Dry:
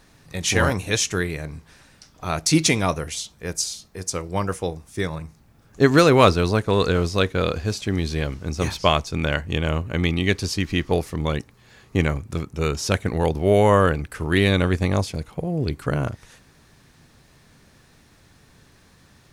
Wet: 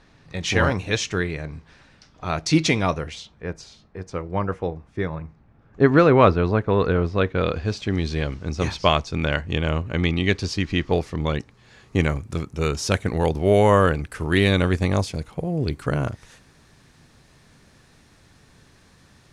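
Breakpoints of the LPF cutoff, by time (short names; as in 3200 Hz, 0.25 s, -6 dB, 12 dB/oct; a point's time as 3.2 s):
2.96 s 4400 Hz
3.51 s 2000 Hz
7.15 s 2000 Hz
7.49 s 3400 Hz
7.99 s 5600 Hz
11.29 s 5600 Hz
12.11 s 11000 Hz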